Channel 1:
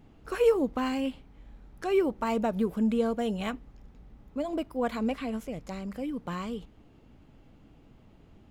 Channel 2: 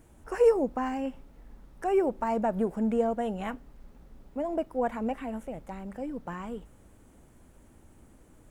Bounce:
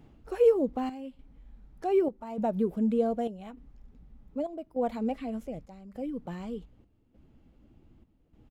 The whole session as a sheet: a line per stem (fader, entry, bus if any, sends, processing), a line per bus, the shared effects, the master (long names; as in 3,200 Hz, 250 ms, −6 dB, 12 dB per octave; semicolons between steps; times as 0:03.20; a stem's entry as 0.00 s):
0.0 dB, 0.00 s, no send, automatic ducking −9 dB, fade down 0.20 s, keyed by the second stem
−3.0 dB, 0.5 ms, no send, gate on every frequency bin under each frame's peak −15 dB strong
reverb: not used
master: square-wave tremolo 0.84 Hz, depth 65%, duty 75%